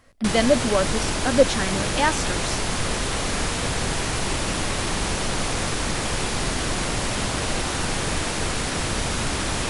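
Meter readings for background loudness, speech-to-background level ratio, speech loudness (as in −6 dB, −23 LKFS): −25.0 LKFS, 1.5 dB, −23.5 LKFS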